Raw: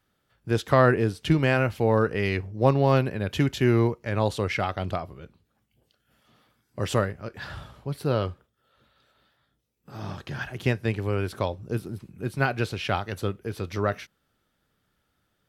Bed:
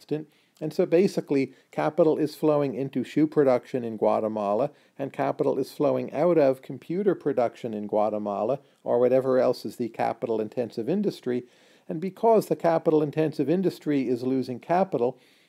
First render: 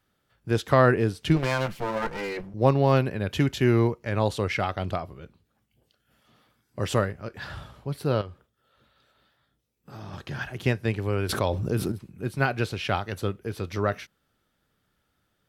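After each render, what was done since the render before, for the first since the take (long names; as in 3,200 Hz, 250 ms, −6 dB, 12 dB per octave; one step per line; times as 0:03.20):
0:01.36–0:02.54: lower of the sound and its delayed copy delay 5.8 ms
0:08.21–0:10.13: downward compressor 3 to 1, threshold −37 dBFS
0:11.29–0:11.92: envelope flattener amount 70%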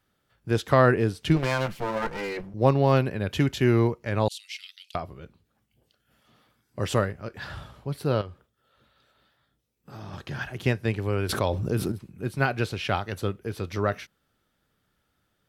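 0:04.28–0:04.95: Butterworth high-pass 2,700 Hz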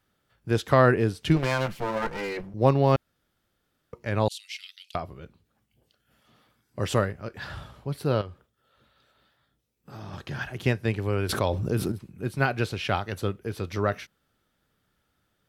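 0:02.96–0:03.93: fill with room tone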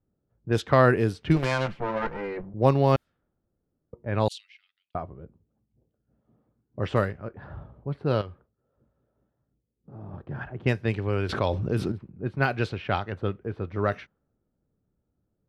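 low-pass that shuts in the quiet parts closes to 450 Hz, open at −18.5 dBFS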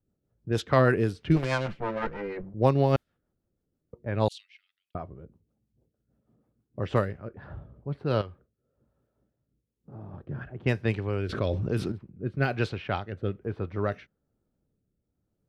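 rotating-speaker cabinet horn 6.3 Hz, later 1.1 Hz, at 0:06.77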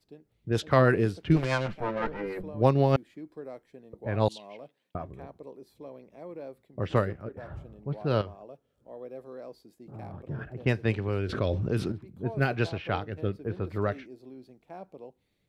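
mix in bed −21 dB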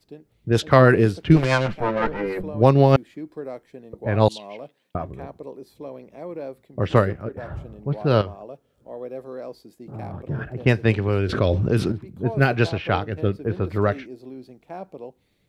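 level +8 dB
brickwall limiter −2 dBFS, peak gain reduction 2 dB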